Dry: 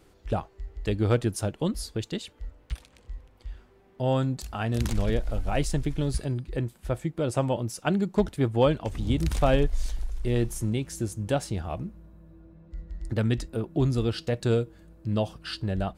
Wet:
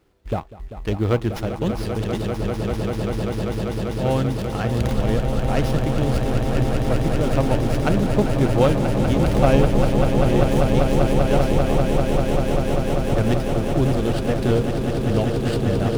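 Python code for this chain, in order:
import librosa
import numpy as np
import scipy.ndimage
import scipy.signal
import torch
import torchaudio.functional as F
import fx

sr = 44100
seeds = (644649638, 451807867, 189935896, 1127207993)

y = fx.law_mismatch(x, sr, coded='A')
y = fx.echo_swell(y, sr, ms=196, loudest=8, wet_db=-8)
y = fx.running_max(y, sr, window=5)
y = y * librosa.db_to_amplitude(4.0)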